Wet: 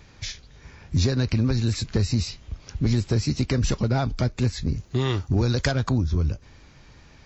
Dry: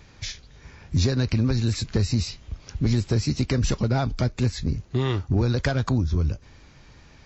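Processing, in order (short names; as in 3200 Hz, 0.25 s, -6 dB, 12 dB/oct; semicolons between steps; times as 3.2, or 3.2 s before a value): 4.75–5.71 high shelf 6600 Hz -> 5100 Hz +11.5 dB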